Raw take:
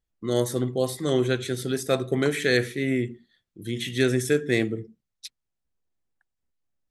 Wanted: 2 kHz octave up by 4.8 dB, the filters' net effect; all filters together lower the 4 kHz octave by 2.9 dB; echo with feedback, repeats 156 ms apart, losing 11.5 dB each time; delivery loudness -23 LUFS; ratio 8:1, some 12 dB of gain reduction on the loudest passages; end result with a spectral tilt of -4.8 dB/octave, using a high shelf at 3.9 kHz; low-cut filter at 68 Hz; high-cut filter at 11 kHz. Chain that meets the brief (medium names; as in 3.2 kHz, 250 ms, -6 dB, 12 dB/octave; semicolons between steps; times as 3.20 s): high-pass 68 Hz; low-pass 11 kHz; peaking EQ 2 kHz +6.5 dB; treble shelf 3.9 kHz +3.5 dB; peaking EQ 4 kHz -7.5 dB; compression 8:1, threshold -28 dBFS; feedback delay 156 ms, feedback 27%, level -11.5 dB; trim +10 dB